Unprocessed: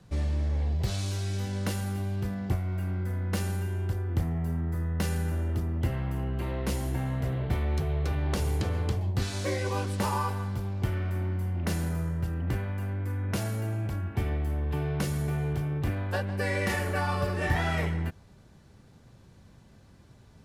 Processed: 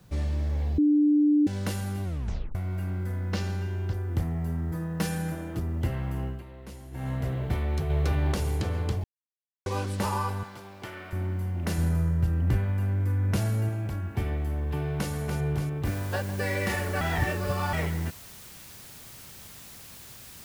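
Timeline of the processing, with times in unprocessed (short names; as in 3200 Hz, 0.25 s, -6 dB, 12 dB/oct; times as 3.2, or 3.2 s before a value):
0.78–1.47 bleep 296 Hz -17.5 dBFS
2.04 tape stop 0.51 s
3.32–3.94 resonant high shelf 7100 Hz -10.5 dB, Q 1.5
4.71–5.59 comb 6.3 ms, depth 78%
6.25–7.09 dip -13.5 dB, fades 0.18 s
7.9–8.32 gain +3.5 dB
9.04–9.66 mute
10.43–11.13 weighting filter A
11.78–13.69 low shelf 160 Hz +8 dB
14.7–15.11 echo throw 0.29 s, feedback 65%, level -6.5 dB
15.85 noise floor step -69 dB -47 dB
17.01–17.73 reverse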